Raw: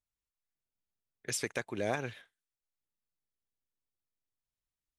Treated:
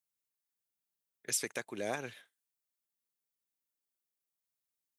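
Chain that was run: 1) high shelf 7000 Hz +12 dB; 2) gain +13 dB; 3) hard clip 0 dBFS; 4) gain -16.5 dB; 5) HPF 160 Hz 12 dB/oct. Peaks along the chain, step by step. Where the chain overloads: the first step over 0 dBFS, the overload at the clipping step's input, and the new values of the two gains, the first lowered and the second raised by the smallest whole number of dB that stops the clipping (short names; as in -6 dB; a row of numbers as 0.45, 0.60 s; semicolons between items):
-15.5, -2.5, -2.5, -19.0, -19.0 dBFS; no overload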